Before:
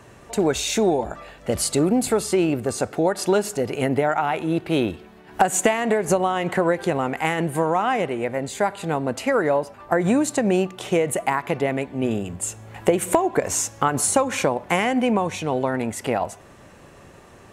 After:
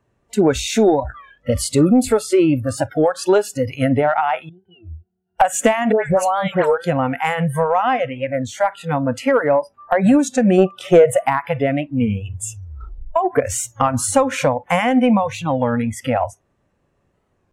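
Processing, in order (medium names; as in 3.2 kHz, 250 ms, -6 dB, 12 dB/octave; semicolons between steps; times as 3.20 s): 4.49–5.40 s: pitch-class resonator F, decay 0.17 s; 5.92–6.78 s: phase dispersion highs, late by 140 ms, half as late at 1.8 kHz; 10.58–11.18 s: peaking EQ 620 Hz +8.5 dB 1.4 oct; 12.53 s: tape stop 0.63 s; spectral noise reduction 26 dB; saturation -7 dBFS, distortion -24 dB; tilt EQ -1.5 dB/octave; warped record 33 1/3 rpm, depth 160 cents; trim +4.5 dB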